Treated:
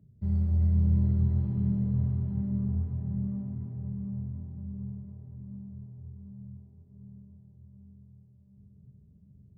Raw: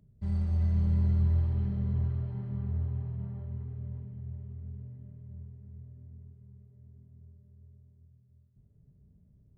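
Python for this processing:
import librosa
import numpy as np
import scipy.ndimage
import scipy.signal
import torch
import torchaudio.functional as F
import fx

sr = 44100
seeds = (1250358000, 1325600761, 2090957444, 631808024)

y = scipy.signal.sosfilt(scipy.signal.butter(2, 77.0, 'highpass', fs=sr, output='sos'), x)
y = fx.tilt_shelf(y, sr, db=8.0, hz=630.0)
y = fx.echo_filtered(y, sr, ms=734, feedback_pct=67, hz=1800.0, wet_db=-5.5)
y = y * librosa.db_to_amplitude(-2.5)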